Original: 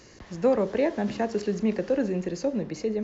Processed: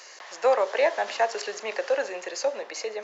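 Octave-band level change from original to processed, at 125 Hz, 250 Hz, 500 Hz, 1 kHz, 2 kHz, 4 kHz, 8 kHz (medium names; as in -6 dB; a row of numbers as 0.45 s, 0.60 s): under -30 dB, -20.0 dB, +1.0 dB, +7.5 dB, +8.5 dB, +8.5 dB, no reading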